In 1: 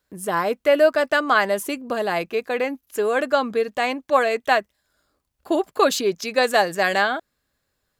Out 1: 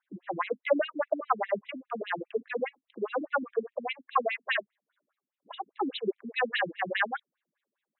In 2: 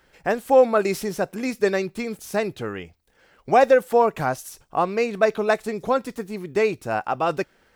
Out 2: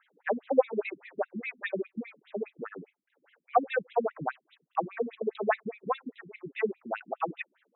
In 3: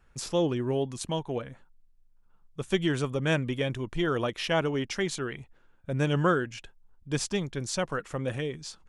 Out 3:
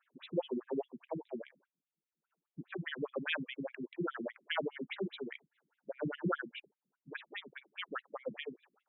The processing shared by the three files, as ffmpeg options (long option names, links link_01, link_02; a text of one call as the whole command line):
ffmpeg -i in.wav -af "asubboost=boost=6:cutoff=110,afftfilt=real='re*between(b*sr/1024,230*pow(2900/230,0.5+0.5*sin(2*PI*4.9*pts/sr))/1.41,230*pow(2900/230,0.5+0.5*sin(2*PI*4.9*pts/sr))*1.41)':imag='im*between(b*sr/1024,230*pow(2900/230,0.5+0.5*sin(2*PI*4.9*pts/sr))/1.41,230*pow(2900/230,0.5+0.5*sin(2*PI*4.9*pts/sr))*1.41)':win_size=1024:overlap=0.75,volume=-1.5dB" out.wav